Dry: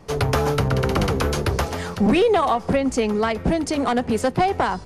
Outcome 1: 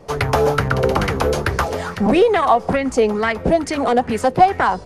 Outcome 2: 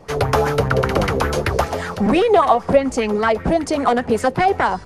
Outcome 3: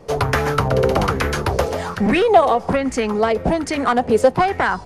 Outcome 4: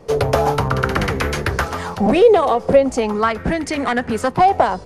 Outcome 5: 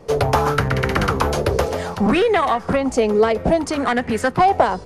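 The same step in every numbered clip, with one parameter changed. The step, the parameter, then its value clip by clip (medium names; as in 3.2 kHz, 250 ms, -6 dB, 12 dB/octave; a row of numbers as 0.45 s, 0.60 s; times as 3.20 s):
sweeping bell, rate: 2.3 Hz, 5.1 Hz, 1.2 Hz, 0.4 Hz, 0.62 Hz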